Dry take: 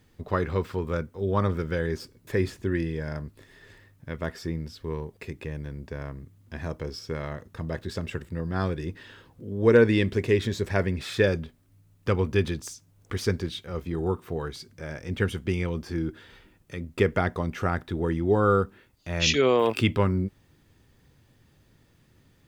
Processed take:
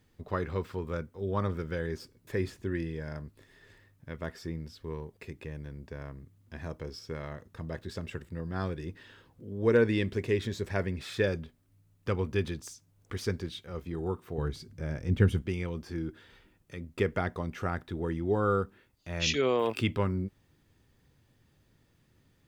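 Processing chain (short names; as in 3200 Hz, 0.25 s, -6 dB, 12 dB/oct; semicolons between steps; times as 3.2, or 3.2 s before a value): 14.38–15.42 low shelf 330 Hz +12 dB; gain -6 dB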